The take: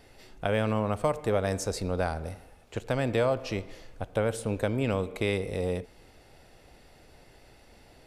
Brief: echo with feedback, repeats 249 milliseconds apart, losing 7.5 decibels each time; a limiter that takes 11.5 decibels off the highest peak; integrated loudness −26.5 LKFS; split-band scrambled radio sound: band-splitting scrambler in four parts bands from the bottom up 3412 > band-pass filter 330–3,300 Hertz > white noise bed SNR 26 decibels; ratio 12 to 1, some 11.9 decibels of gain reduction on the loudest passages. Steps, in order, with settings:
downward compressor 12 to 1, threshold −33 dBFS
brickwall limiter −28 dBFS
repeating echo 249 ms, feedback 42%, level −7.5 dB
band-splitting scrambler in four parts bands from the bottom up 3412
band-pass filter 330–3,300 Hz
white noise bed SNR 26 dB
level +13.5 dB

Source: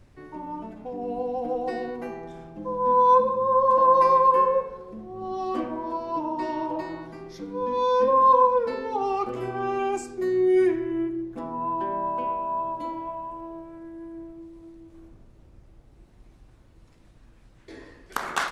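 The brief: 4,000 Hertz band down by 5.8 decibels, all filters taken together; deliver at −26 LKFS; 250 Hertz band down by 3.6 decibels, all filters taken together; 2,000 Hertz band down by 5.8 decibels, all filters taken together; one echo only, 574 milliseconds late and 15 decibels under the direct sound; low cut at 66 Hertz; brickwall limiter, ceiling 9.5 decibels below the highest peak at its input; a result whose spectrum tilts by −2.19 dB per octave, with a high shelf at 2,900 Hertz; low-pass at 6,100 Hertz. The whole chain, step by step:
high-pass filter 66 Hz
low-pass filter 6,100 Hz
parametric band 250 Hz −6 dB
parametric band 2,000 Hz −8 dB
high-shelf EQ 2,900 Hz +4 dB
parametric band 4,000 Hz −7 dB
brickwall limiter −18.5 dBFS
single-tap delay 574 ms −15 dB
level +3 dB

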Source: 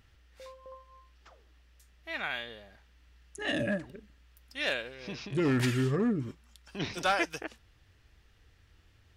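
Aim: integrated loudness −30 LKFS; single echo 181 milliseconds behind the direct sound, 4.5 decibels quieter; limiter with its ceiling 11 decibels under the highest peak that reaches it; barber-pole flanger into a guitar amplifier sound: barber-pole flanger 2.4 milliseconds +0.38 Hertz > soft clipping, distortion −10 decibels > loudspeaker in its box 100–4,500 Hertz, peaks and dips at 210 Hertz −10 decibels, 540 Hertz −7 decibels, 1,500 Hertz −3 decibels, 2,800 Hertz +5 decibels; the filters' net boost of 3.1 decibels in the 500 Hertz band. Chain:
parametric band 500 Hz +8 dB
brickwall limiter −25 dBFS
single-tap delay 181 ms −4.5 dB
barber-pole flanger 2.4 ms +0.38 Hz
soft clipping −35.5 dBFS
loudspeaker in its box 100–4,500 Hz, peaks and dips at 210 Hz −10 dB, 540 Hz −7 dB, 1,500 Hz −3 dB, 2,800 Hz +5 dB
level +14 dB

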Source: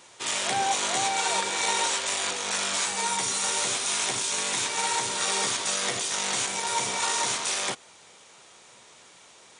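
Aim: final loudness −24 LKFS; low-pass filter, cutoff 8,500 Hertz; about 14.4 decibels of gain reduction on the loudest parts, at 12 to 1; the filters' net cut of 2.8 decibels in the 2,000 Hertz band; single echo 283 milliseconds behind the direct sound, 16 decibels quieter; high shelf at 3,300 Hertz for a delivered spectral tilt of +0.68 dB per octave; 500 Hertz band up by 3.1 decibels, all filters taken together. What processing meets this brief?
low-pass filter 8,500 Hz
parametric band 500 Hz +4 dB
parametric band 2,000 Hz −6.5 dB
high-shelf EQ 3,300 Hz +7.5 dB
downward compressor 12 to 1, threshold −35 dBFS
single-tap delay 283 ms −16 dB
level +12 dB

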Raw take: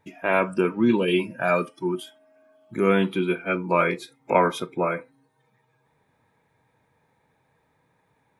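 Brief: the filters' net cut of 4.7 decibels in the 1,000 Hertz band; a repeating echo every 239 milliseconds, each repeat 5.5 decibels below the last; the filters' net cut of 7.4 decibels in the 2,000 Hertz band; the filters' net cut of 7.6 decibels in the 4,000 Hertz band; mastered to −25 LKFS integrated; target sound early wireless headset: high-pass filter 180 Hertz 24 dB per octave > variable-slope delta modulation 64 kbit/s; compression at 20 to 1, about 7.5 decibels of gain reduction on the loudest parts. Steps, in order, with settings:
parametric band 1,000 Hz −3.5 dB
parametric band 2,000 Hz −7 dB
parametric band 4,000 Hz −7 dB
downward compressor 20 to 1, threshold −22 dBFS
high-pass filter 180 Hz 24 dB per octave
repeating echo 239 ms, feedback 53%, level −5.5 dB
variable-slope delta modulation 64 kbit/s
level +4.5 dB

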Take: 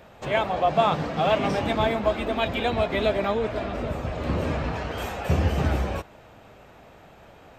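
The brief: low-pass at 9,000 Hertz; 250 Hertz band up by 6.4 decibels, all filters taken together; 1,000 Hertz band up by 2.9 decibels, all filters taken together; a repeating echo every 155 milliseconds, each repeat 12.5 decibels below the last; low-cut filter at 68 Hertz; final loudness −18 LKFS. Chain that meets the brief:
high-pass filter 68 Hz
low-pass filter 9,000 Hz
parametric band 250 Hz +8 dB
parametric band 1,000 Hz +3.5 dB
repeating echo 155 ms, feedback 24%, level −12.5 dB
level +4.5 dB

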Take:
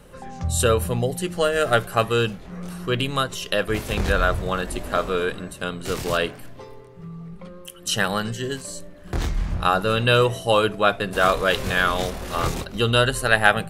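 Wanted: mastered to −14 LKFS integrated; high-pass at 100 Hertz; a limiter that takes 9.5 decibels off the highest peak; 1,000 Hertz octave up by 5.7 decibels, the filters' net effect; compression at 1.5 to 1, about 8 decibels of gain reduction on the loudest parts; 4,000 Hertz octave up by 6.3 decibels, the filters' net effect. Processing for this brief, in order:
high-pass filter 100 Hz
parametric band 1,000 Hz +7.5 dB
parametric band 4,000 Hz +7.5 dB
downward compressor 1.5 to 1, threshold −31 dBFS
level +13.5 dB
brickwall limiter −0.5 dBFS

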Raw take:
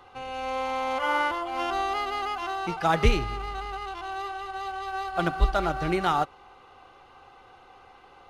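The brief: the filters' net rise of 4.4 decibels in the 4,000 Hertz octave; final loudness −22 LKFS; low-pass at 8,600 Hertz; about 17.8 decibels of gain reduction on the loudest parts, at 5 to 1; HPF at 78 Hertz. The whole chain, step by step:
high-pass filter 78 Hz
low-pass filter 8,600 Hz
parametric band 4,000 Hz +6 dB
downward compressor 5 to 1, threshold −38 dBFS
level +18 dB

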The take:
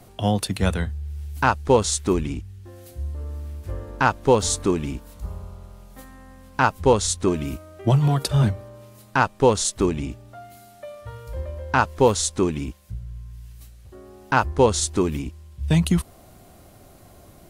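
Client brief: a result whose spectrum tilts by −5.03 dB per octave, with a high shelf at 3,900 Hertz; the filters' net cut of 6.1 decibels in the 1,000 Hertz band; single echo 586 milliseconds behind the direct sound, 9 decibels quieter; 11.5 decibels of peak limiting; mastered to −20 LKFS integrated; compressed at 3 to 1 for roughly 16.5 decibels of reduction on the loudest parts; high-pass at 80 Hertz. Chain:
high-pass filter 80 Hz
parametric band 1,000 Hz −7.5 dB
high-shelf EQ 3,900 Hz −3 dB
downward compressor 3 to 1, threshold −37 dBFS
brickwall limiter −29.5 dBFS
single-tap delay 586 ms −9 dB
level +21 dB

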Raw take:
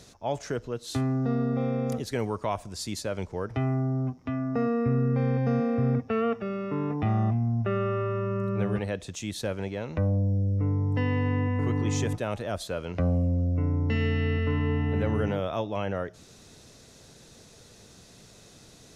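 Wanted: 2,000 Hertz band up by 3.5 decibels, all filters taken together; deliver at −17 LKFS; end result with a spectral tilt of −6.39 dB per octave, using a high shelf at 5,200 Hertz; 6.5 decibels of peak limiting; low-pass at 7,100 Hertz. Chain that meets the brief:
low-pass filter 7,100 Hz
parametric band 2,000 Hz +5 dB
high-shelf EQ 5,200 Hz −6 dB
level +13.5 dB
brickwall limiter −8 dBFS

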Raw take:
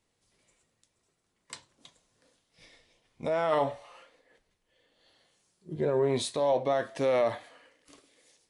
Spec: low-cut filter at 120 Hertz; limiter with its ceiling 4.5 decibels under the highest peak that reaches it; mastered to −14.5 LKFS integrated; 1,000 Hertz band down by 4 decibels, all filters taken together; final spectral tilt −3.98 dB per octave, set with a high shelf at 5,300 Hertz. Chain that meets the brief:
high-pass filter 120 Hz
parametric band 1,000 Hz −6 dB
high-shelf EQ 5,300 Hz +8 dB
level +19 dB
brickwall limiter −3.5 dBFS

